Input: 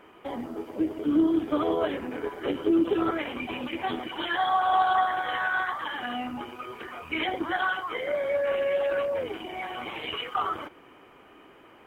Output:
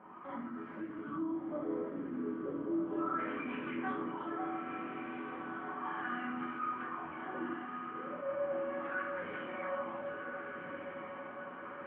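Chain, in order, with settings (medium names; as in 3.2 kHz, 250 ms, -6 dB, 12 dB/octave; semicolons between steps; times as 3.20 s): high-pass 160 Hz 12 dB/octave; high-order bell 520 Hz -12 dB; simulated room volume 110 m³, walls mixed, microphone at 1 m; compression 2:1, threshold -47 dBFS, peak gain reduction 15 dB; LFO low-pass sine 0.35 Hz 380–1600 Hz; on a send: echo that smears into a reverb 1414 ms, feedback 53%, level -4.5 dB; on the sum: attacks held to a fixed rise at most 110 dB/s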